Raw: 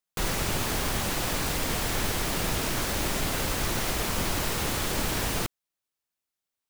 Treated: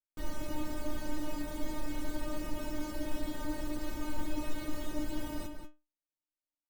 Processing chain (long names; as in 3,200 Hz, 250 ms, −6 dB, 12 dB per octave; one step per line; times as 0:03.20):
tilt shelving filter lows +8 dB, about 830 Hz
stiff-string resonator 300 Hz, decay 0.26 s, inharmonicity 0.002
slap from a distant wall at 32 metres, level −7 dB
level +2 dB